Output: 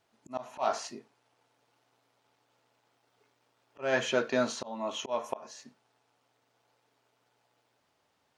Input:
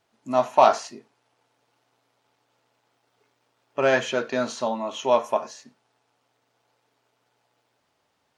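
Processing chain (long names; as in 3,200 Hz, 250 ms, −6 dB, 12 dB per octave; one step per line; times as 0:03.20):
volume swells 274 ms
level −2.5 dB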